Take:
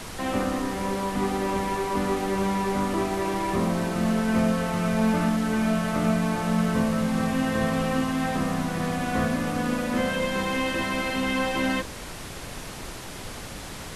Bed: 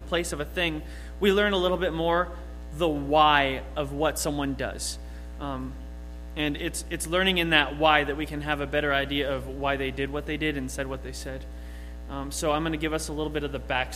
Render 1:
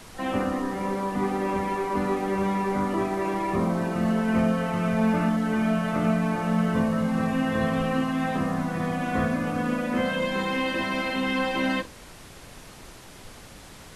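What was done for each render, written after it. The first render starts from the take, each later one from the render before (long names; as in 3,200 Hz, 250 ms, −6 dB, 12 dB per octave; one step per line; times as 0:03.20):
noise reduction from a noise print 8 dB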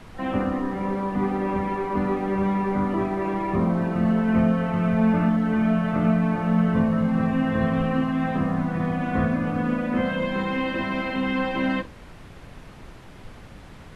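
bass and treble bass +5 dB, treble −13 dB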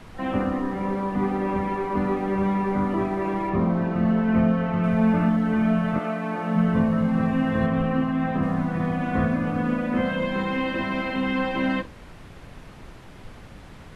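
0:03.49–0:04.84: high-frequency loss of the air 74 metres
0:05.98–0:06.55: high-pass filter 460 Hz → 210 Hz
0:07.66–0:08.43: high-shelf EQ 3,700 Hz −7 dB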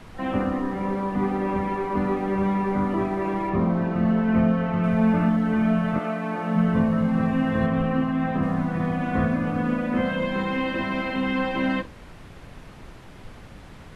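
no processing that can be heard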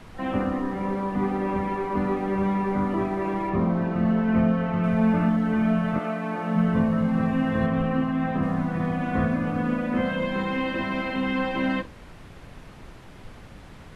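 level −1 dB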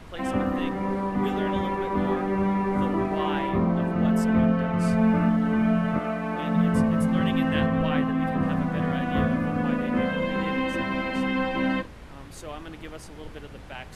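mix in bed −13 dB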